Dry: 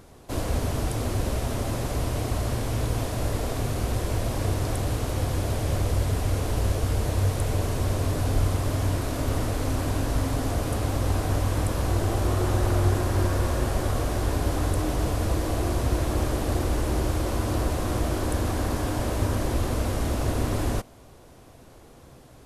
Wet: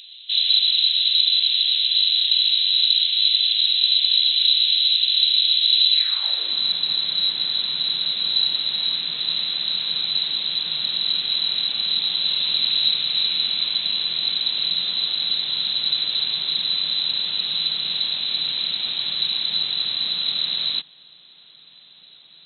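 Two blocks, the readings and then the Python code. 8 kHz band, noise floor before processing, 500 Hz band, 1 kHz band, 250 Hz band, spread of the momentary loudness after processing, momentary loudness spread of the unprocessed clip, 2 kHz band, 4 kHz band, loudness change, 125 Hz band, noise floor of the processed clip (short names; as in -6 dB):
under -40 dB, -49 dBFS, under -20 dB, -13.5 dB, under -15 dB, 6 LU, 3 LU, +1.5 dB, +25.5 dB, +9.0 dB, under -25 dB, -49 dBFS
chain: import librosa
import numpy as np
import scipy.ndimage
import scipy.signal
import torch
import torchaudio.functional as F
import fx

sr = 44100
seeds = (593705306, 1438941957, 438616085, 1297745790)

y = fx.freq_invert(x, sr, carrier_hz=4000)
y = fx.filter_sweep_highpass(y, sr, from_hz=3000.0, to_hz=160.0, start_s=5.91, end_s=6.64, q=3.1)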